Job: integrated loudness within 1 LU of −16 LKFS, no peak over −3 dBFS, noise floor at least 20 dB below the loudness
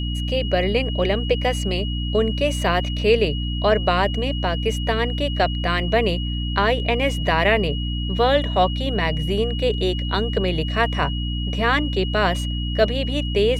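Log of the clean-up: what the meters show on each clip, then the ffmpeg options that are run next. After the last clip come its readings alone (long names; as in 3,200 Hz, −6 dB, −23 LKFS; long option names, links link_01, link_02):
mains hum 60 Hz; hum harmonics up to 300 Hz; level of the hum −23 dBFS; interfering tone 2,900 Hz; level of the tone −31 dBFS; integrated loudness −21.5 LKFS; sample peak −5.0 dBFS; target loudness −16.0 LKFS
→ -af "bandreject=frequency=60:width_type=h:width=4,bandreject=frequency=120:width_type=h:width=4,bandreject=frequency=180:width_type=h:width=4,bandreject=frequency=240:width_type=h:width=4,bandreject=frequency=300:width_type=h:width=4"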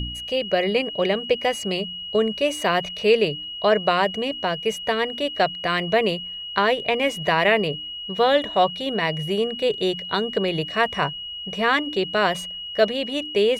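mains hum none found; interfering tone 2,900 Hz; level of the tone −31 dBFS
→ -af "bandreject=frequency=2900:width=30"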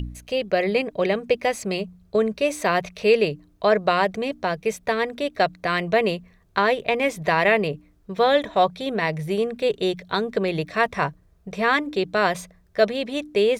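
interfering tone none found; integrated loudness −23.0 LKFS; sample peak −5.5 dBFS; target loudness −16.0 LKFS
→ -af "volume=7dB,alimiter=limit=-3dB:level=0:latency=1"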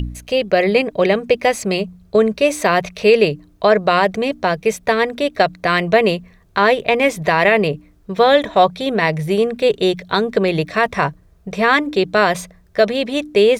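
integrated loudness −16.5 LKFS; sample peak −3.0 dBFS; background noise floor −51 dBFS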